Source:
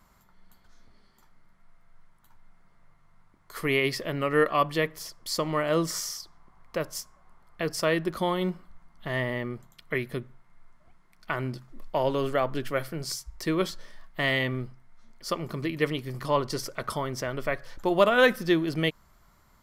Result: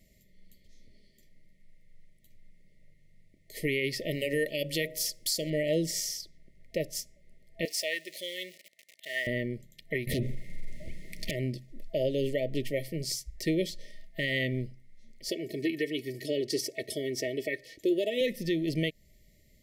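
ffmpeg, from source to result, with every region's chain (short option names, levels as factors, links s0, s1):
-filter_complex "[0:a]asettb=1/sr,asplit=3[s0][s1][s2];[s0]atrim=end=4.114[s3];[s1]atrim=start=4.11:end=5.5,asetpts=PTS-STARTPTS,afade=t=in:d=0.004:c=qsin,afade=t=out:st=1.386:d=0.004:c=qsin,highshelf=f=3300:g=11.5,bandreject=f=69.52:t=h:w=4,bandreject=f=139.04:t=h:w=4,bandreject=f=208.56:t=h:w=4,bandreject=f=278.08:t=h:w=4,bandreject=f=347.6:t=h:w=4,bandreject=f=417.12:t=h:w=4,bandreject=f=486.64:t=h:w=4,bandreject=f=556.16:t=h:w=4,bandreject=f=625.68:t=h:w=4,bandreject=f=695.2:t=h:w=4,bandreject=f=764.72:t=h:w=4,bandreject=f=834.24:t=h:w=4,bandreject=f=903.76:t=h:w=4,bandreject=f=973.28:t=h:w=4,bandreject=f=1042.8:t=h:w=4,bandreject=f=1112.32:t=h:w=4,bandreject=f=1181.84:t=h:w=4,bandreject=f=1251.36:t=h:w=4,bandreject=f=1320.88:t=h:w=4[s4];[s2]atrim=start=5.496[s5];[s3][s4]acrossfade=d=0.004:c1=hsin:c2=qsin[s6];[s6][s5]acrossfade=d=0.004:c1=qsin:c2=hsin,asettb=1/sr,asplit=3[s7][s8][s9];[s7]atrim=end=7.654[s10];[s8]atrim=start=7.65:end=9.27,asetpts=PTS-STARTPTS,afade=t=in:d=0.004:c=qsin,afade=t=out:st=1.616:d=0.004:c=qsin,aeval=exprs='val(0)+0.5*0.0112*sgn(val(0))':c=same,highpass=990[s11];[s9]atrim=start=9.266[s12];[s10][s11]acrossfade=d=0.004:c1=hsin:c2=qsin[s13];[s13][s12]acrossfade=d=0.004:c1=qsin:c2=hsin,asettb=1/sr,asplit=3[s14][s15][s16];[s14]atrim=end=10.074[s17];[s15]atrim=start=10.07:end=11.31,asetpts=PTS-STARTPTS,afade=t=in:d=0.004:c=qsin,afade=t=out:st=1.236:d=0.004:c=qsin,acompressor=threshold=0.0112:ratio=5:attack=3.2:release=140:knee=1:detection=peak,aeval=exprs='0.0596*sin(PI/2*6.31*val(0)/0.0596)':c=same[s18];[s16]atrim=start=11.306[s19];[s17][s18]acrossfade=d=0.004:c1=hsin:c2=qsin[s20];[s20][s19]acrossfade=d=0.004:c1=qsin:c2=hsin,asettb=1/sr,asplit=3[s21][s22][s23];[s21]atrim=end=15.294[s24];[s22]atrim=start=15.29:end=18.21,asetpts=PTS-STARTPTS,afade=t=in:d=0.004:c=qsin,afade=t=out:st=2.916:d=0.004:c=qsin,highpass=180,aecho=1:1:2.7:0.63,atrim=end_sample=128772[s25];[s23]atrim=start=18.206[s26];[s24][s25]acrossfade=d=0.004:c1=hsin:c2=qsin[s27];[s27][s26]acrossfade=d=0.004:c1=qsin:c2=hsin,afftfilt=real='re*(1-between(b*sr/4096,660,1800))':imag='im*(1-between(b*sr/4096,660,1800))':win_size=4096:overlap=0.75,alimiter=limit=0.106:level=0:latency=1:release=202"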